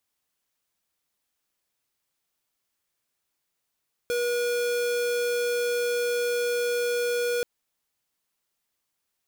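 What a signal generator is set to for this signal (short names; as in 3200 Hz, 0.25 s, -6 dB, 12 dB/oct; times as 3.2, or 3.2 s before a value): tone square 482 Hz -26 dBFS 3.33 s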